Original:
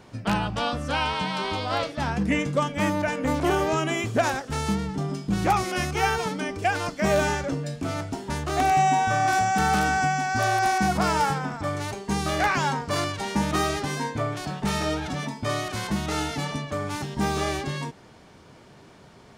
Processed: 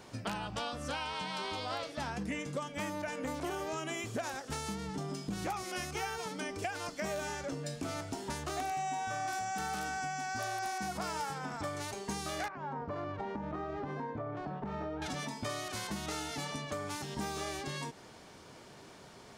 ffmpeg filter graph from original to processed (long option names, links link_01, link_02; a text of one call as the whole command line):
ffmpeg -i in.wav -filter_complex "[0:a]asettb=1/sr,asplit=3[link_01][link_02][link_03];[link_01]atrim=end=12.484[link_04];[link_02]atrim=start=12.48:end=15.02,asetpts=PTS-STARTPTS,afade=type=in:duration=0.004:curve=qsin,afade=type=out:start_time=2.536:duration=0.004:curve=qsin,lowpass=1100,acompressor=threshold=-28dB:ratio=6:attack=3.2:release=140:knee=1:detection=peak[link_05];[link_03]atrim=start=15.016[link_06];[link_04][link_05]acrossfade=duration=0.004:curve1=hsin:curve2=qsin[link_07];[link_07][link_06]acrossfade=duration=0.004:curve1=qsin:curve2=hsin,bass=frequency=250:gain=-5,treble=frequency=4000:gain=5,acompressor=threshold=-33dB:ratio=6,volume=-2dB" out.wav